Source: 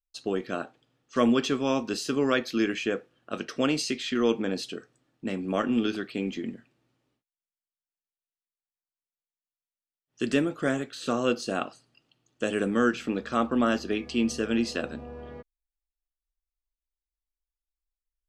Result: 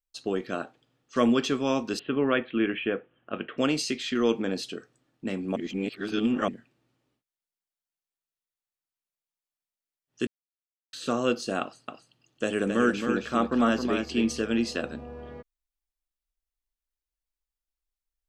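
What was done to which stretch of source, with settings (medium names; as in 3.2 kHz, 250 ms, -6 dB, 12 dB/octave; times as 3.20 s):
1.99–3.58 s: steep low-pass 3.3 kHz 72 dB/octave
5.56–6.48 s: reverse
10.27–10.93 s: mute
11.61–14.42 s: delay 268 ms -6 dB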